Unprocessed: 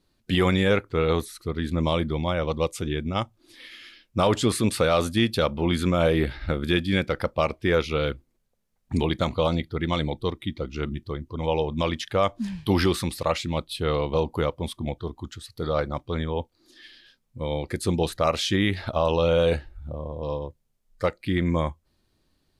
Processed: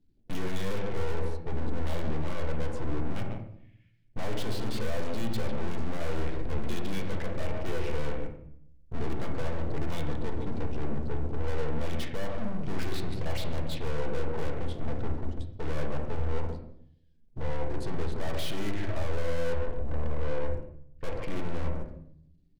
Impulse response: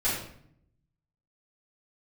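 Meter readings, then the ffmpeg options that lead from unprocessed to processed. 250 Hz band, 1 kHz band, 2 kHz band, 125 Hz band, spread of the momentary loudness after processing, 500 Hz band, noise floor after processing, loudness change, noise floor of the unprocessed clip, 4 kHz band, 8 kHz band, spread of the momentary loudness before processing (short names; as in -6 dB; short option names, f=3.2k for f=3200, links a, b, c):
-10.0 dB, -11.0 dB, -10.0 dB, -6.5 dB, 6 LU, -10.5 dB, -59 dBFS, -9.5 dB, -71 dBFS, -13.0 dB, -11.5 dB, 11 LU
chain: -filter_complex "[0:a]aeval=exprs='val(0)+0.5*0.0237*sgn(val(0))':c=same,afwtdn=0.0224,lowpass=6k,equalizer=f=1.2k:t=o:w=0.8:g=-11.5,asplit=2[a][b];[b]adelay=147,lowpass=f=3.6k:p=1,volume=-14dB,asplit=2[c][d];[d]adelay=147,lowpass=f=3.6k:p=1,volume=0.42,asplit=2[e][f];[f]adelay=147,lowpass=f=3.6k:p=1,volume=0.42,asplit=2[g][h];[h]adelay=147,lowpass=f=3.6k:p=1,volume=0.42[i];[a][c][e][g][i]amix=inputs=5:normalize=0,agate=range=-36dB:threshold=-34dB:ratio=16:detection=peak,aeval=exprs='(tanh(100*val(0)+0.75)-tanh(0.75))/100':c=same,alimiter=level_in=17.5dB:limit=-24dB:level=0:latency=1,volume=-17.5dB,asplit=2[j][k];[1:a]atrim=start_sample=2205,lowpass=2.7k[l];[k][l]afir=irnorm=-1:irlink=0,volume=-11dB[m];[j][m]amix=inputs=2:normalize=0,volume=8.5dB"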